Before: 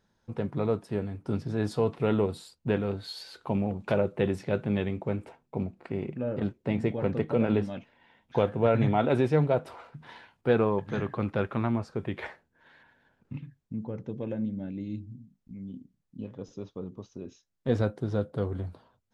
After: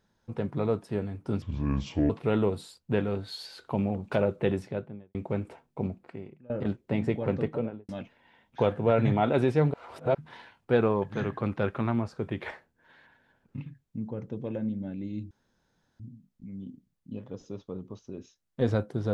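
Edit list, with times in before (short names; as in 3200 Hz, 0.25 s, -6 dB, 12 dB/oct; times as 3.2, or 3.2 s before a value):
1.42–1.86 speed 65%
4.21–4.91 studio fade out
5.72–6.26 fade out quadratic, to -21.5 dB
7.13–7.65 studio fade out
9.5–9.91 reverse
15.07 insert room tone 0.69 s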